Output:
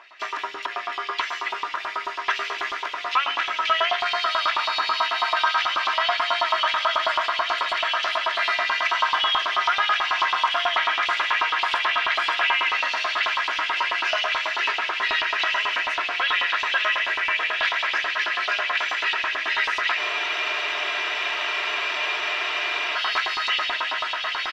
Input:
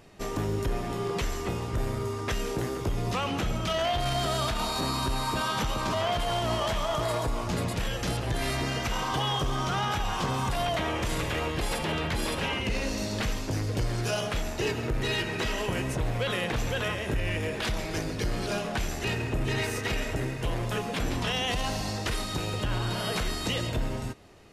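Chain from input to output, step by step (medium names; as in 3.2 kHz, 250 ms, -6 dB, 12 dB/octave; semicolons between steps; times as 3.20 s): bass shelf 180 Hz -11 dB; on a send: echo that smears into a reverb 1370 ms, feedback 65%, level -5 dB; on the sum: LFO high-pass saw up 9.2 Hz 950–3500 Hz; comb 3 ms, depth 52%; in parallel at +0.5 dB: peak limiter -24.5 dBFS, peak gain reduction 11.5 dB; on the sum: distance through air 240 m; hum notches 50/100/150/200 Hz; spectral freeze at 20.00 s, 2.95 s; trim +4.5 dB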